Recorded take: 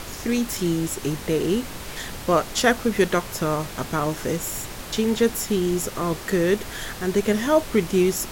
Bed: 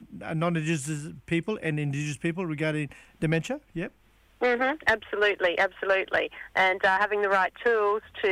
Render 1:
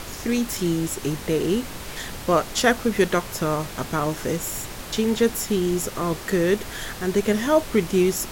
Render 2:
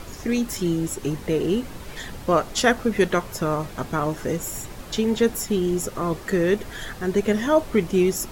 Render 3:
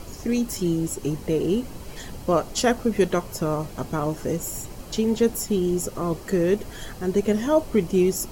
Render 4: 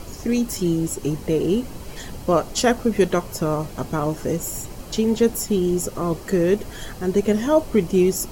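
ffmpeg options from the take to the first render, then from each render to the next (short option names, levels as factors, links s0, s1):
-af anull
-af "afftdn=nr=8:nf=-36"
-af "equalizer=f=1700:w=1.1:g=-7.5,bandreject=f=3600:w=10"
-af "volume=1.33"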